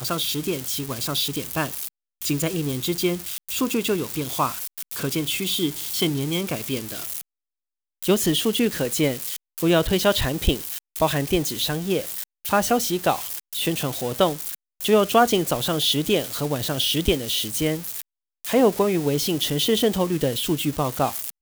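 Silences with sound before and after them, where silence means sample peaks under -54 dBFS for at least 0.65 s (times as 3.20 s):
7.21–8.03 s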